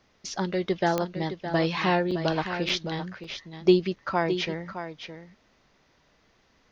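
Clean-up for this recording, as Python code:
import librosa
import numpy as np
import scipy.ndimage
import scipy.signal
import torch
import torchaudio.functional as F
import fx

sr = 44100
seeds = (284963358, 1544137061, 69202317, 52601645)

y = fx.fix_declick_ar(x, sr, threshold=10.0)
y = fx.fix_interpolate(y, sr, at_s=(2.11, 2.69, 3.24, 3.96), length_ms=4.2)
y = fx.fix_echo_inverse(y, sr, delay_ms=614, level_db=-10.0)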